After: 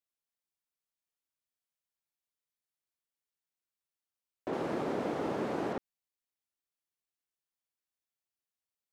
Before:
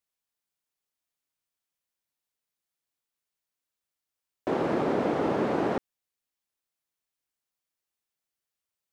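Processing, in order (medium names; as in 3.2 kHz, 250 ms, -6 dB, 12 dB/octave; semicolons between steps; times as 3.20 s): 4.53–5.73 s: treble shelf 5.7 kHz +9 dB; trim -7.5 dB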